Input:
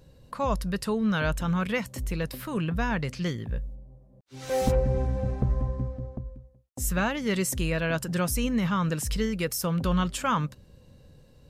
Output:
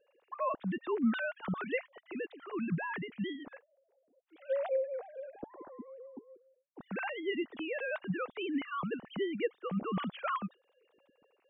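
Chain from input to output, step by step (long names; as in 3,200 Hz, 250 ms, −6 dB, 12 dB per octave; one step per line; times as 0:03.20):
three sine waves on the formant tracks
0:03.72–0:05.88: low-shelf EQ 320 Hz −7.5 dB
level −9 dB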